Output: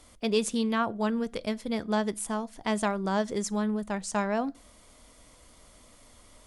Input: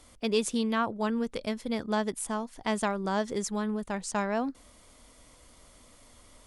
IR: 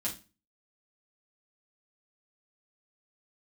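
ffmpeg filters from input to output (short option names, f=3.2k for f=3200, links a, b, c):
-filter_complex "[0:a]asplit=2[a][b];[b]equalizer=f=680:t=o:w=0.23:g=11.5[c];[1:a]atrim=start_sample=2205[d];[c][d]afir=irnorm=-1:irlink=0,volume=-20.5dB[e];[a][e]amix=inputs=2:normalize=0"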